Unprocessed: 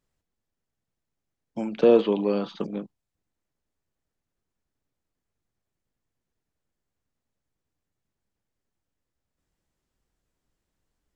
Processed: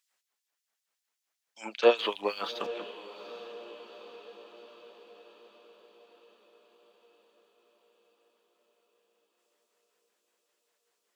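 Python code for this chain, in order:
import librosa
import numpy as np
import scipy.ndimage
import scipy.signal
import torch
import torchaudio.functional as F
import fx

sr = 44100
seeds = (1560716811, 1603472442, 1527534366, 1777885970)

y = fx.filter_lfo_highpass(x, sr, shape='sine', hz=5.2, low_hz=750.0, high_hz=4000.0, q=0.75)
y = fx.backlash(y, sr, play_db=-59.0, at=(1.97, 2.75))
y = fx.echo_diffused(y, sr, ms=840, feedback_pct=58, wet_db=-14.0)
y = y * 10.0 ** (7.5 / 20.0)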